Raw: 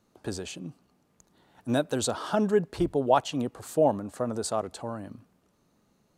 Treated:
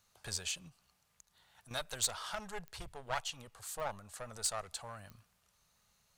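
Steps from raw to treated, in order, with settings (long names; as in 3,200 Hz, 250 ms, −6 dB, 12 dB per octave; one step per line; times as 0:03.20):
one-sided soft clipper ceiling −26 dBFS
speech leveller within 5 dB 2 s
guitar amp tone stack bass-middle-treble 10-0-10
0:00.68–0:01.71: downward compressor, threshold −57 dBFS, peak gain reduction 11 dB
digital clicks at 0:02.68/0:03.80/0:05.10, −34 dBFS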